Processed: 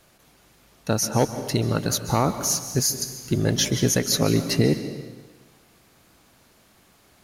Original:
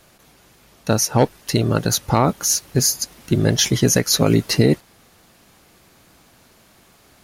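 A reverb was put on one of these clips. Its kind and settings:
dense smooth reverb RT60 1.3 s, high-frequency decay 0.9×, pre-delay 120 ms, DRR 10 dB
level −5 dB

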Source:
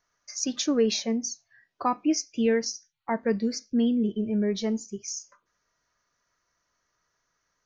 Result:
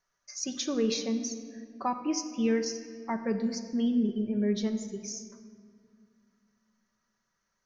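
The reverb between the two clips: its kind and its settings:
rectangular room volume 3,900 cubic metres, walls mixed, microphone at 1.1 metres
level −5 dB

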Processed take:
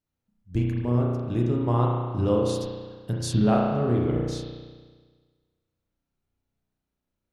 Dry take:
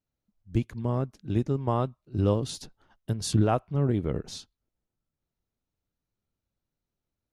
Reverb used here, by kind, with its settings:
spring reverb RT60 1.5 s, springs 33 ms, chirp 65 ms, DRR −2.5 dB
level −1 dB

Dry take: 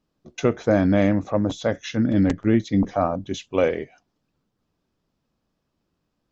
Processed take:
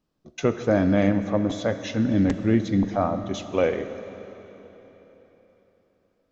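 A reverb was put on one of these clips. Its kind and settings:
comb and all-pass reverb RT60 3.9 s, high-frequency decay 0.9×, pre-delay 0 ms, DRR 9.5 dB
level −2 dB

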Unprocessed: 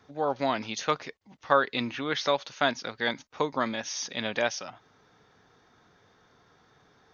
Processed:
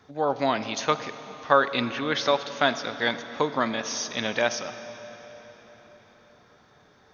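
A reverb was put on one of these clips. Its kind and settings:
comb and all-pass reverb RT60 4.6 s, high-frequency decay 0.85×, pre-delay 5 ms, DRR 11 dB
level +3 dB

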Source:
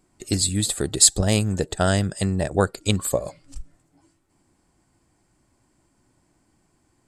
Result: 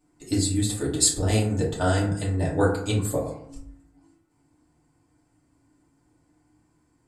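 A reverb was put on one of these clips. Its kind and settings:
feedback delay network reverb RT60 0.68 s, low-frequency decay 1.2×, high-frequency decay 0.4×, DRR −6.5 dB
level −10 dB

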